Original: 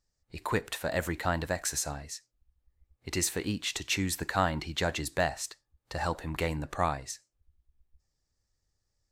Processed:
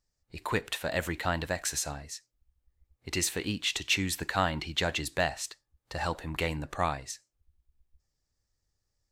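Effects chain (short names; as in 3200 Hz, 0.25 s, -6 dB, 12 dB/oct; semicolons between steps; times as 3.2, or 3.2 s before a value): dynamic EQ 3000 Hz, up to +6 dB, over -48 dBFS, Q 1.3; gain -1 dB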